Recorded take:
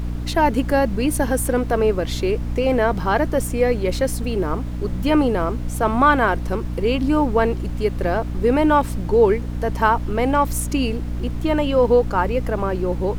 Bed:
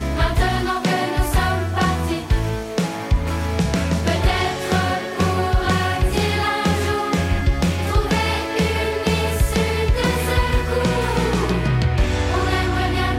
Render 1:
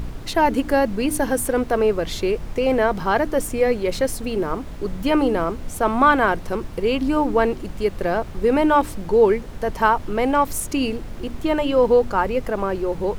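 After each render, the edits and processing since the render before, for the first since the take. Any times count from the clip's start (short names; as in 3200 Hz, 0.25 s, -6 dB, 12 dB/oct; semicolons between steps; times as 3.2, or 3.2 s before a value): de-hum 60 Hz, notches 5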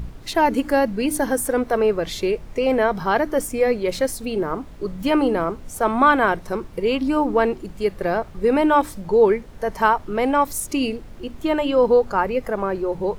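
noise print and reduce 7 dB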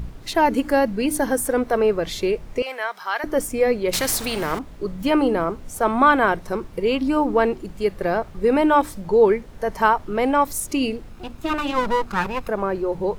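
2.62–3.24 HPF 1200 Hz; 3.93–4.59 spectral compressor 2:1; 11.09–12.49 minimum comb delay 0.78 ms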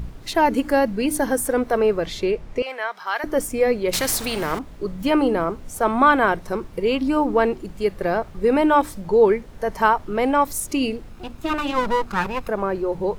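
2.06–3.07 high shelf 8300 Hz -11 dB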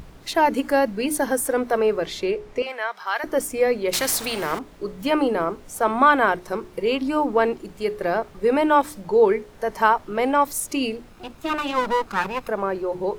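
low shelf 140 Hz -11 dB; notches 60/120/180/240/300/360/420 Hz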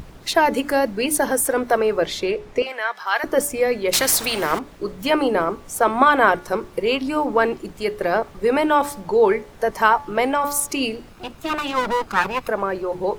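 de-hum 287.1 Hz, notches 20; harmonic-percussive split percussive +6 dB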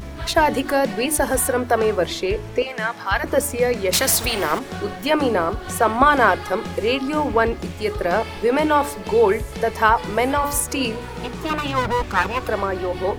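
add bed -12.5 dB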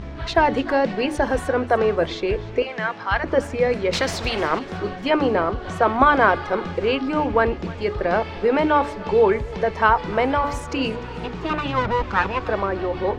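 air absorption 160 m; thinning echo 0.3 s, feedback 48%, level -19 dB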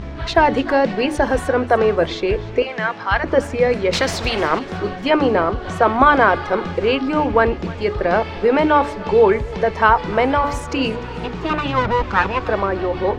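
gain +3.5 dB; limiter -1 dBFS, peak gain reduction 2 dB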